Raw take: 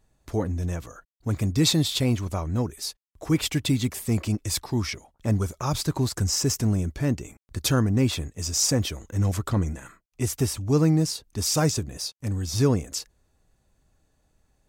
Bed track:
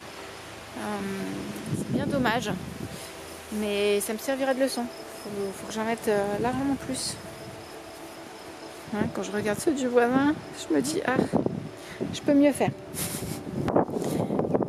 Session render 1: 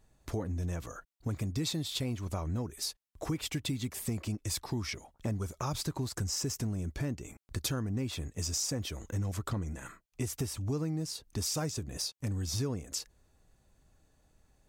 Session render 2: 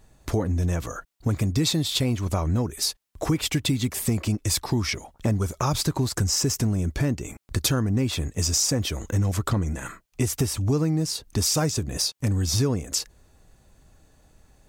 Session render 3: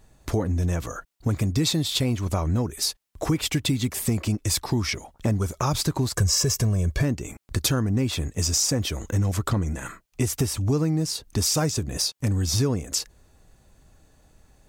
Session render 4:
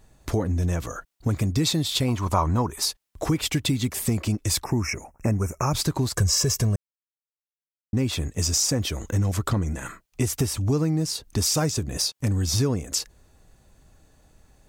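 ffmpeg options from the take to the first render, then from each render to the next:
-af "acompressor=threshold=-32dB:ratio=5"
-af "volume=10.5dB"
-filter_complex "[0:a]asettb=1/sr,asplit=3[a][b][c];[a]atrim=end=6.144[d];[b]atrim=start=6.14:end=7.03,asetpts=PTS-STARTPTS,afade=t=in:d=0.004:c=qsin,afade=t=out:st=0.886:d=0.004:c=qsin,aecho=1:1:1.8:0.65,atrim=end_sample=39249[e];[c]atrim=start=7.026[f];[d][e]acrossfade=d=0.004:c1=hsin:c2=qsin[g];[g][f]acrossfade=d=0.004:c1=qsin:c2=hsin"
-filter_complex "[0:a]asettb=1/sr,asplit=3[a][b][c];[a]atrim=end=2.084[d];[b]atrim=start=2.08:end=2.85,asetpts=PTS-STARTPTS,afade=t=in:d=0.004:c=qsin,afade=t=out:st=0.766:d=0.004:c=qsin,equalizer=f=1k:w=2:g=13[e];[c]atrim=start=2.846[f];[d][e]acrossfade=d=0.004:c1=hsin:c2=qsin[g];[g][f]acrossfade=d=0.004:c1=qsin:c2=hsin,asettb=1/sr,asplit=3[h][i][j];[h]atrim=end=4.644[k];[i]atrim=start=4.64:end=5.73,asetpts=PTS-STARTPTS,afade=t=in:d=0.004:c=qsin,afade=t=out:st=1.086:d=0.004:c=qsin,asuperstop=centerf=3800:order=20:qfactor=1.5[l];[j]atrim=start=5.726[m];[k][l]acrossfade=d=0.004:c1=hsin:c2=qsin[n];[n][m]acrossfade=d=0.004:c1=qsin:c2=hsin,asplit=3[o][p][q];[o]atrim=end=6.76,asetpts=PTS-STARTPTS,afade=t=out:st=6.756:d=0.004:c=hsin[r];[p]atrim=start=6.76:end=7.93,asetpts=PTS-STARTPTS,volume=0[s];[q]atrim=start=7.93,asetpts=PTS-STARTPTS,afade=t=in:d=0.004:c=hsin[t];[r][s][t]concat=n=3:v=0:a=1"

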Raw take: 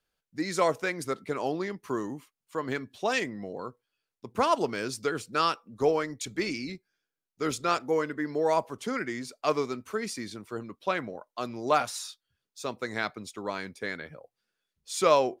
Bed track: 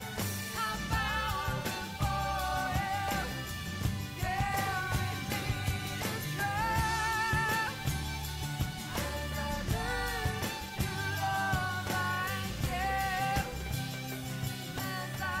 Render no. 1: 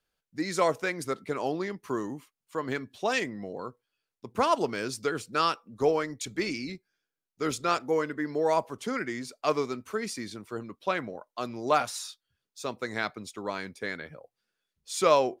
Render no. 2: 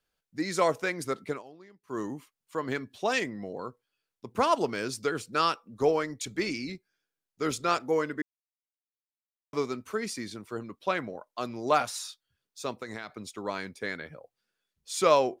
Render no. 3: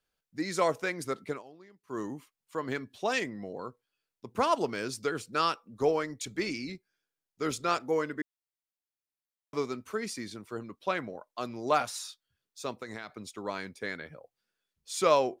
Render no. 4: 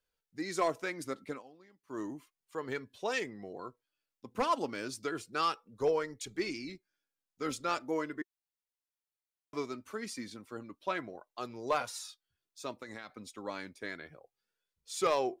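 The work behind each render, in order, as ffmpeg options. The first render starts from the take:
-af anull
-filter_complex "[0:a]asettb=1/sr,asplit=3[a][b][c];[a]atrim=end=12.734[d];[b]atrim=start=12.73:end=13.28,asetpts=PTS-STARTPTS,afade=t=in:d=0.004:c=qsin,afade=t=out:st=0.546:d=0.004:c=qsin,acompressor=threshold=-33dB:ratio=12:attack=3.2:release=140:knee=1:detection=peak[e];[c]atrim=start=13.276[f];[d][e]acrossfade=d=0.004:c1=hsin:c2=qsin[g];[g][f]acrossfade=d=0.004:c1=qsin:c2=hsin,asplit=5[h][i][j][k][l];[h]atrim=end=1.43,asetpts=PTS-STARTPTS,afade=t=out:st=1.3:d=0.13:silence=0.1[m];[i]atrim=start=1.43:end=1.87,asetpts=PTS-STARTPTS,volume=-20dB[n];[j]atrim=start=1.87:end=8.22,asetpts=PTS-STARTPTS,afade=t=in:d=0.13:silence=0.1,afade=t=out:st=6.346:d=0.004:c=hsin[o];[k]atrim=start=8.22:end=9.53,asetpts=PTS-STARTPTS,volume=0[p];[l]atrim=start=9.53,asetpts=PTS-STARTPTS,afade=t=in:d=0.004:c=hsin[q];[m][n][o][p][q]concat=n=5:v=0:a=1"
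-af "volume=-2dB"
-af "flanger=delay=1.9:depth=2.1:regen=49:speed=0.34:shape=triangular,volume=21.5dB,asoftclip=hard,volume=-21.5dB"

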